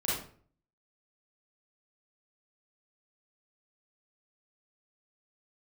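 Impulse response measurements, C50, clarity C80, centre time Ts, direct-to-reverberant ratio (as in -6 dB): -0.5 dB, 6.5 dB, 57 ms, -7.5 dB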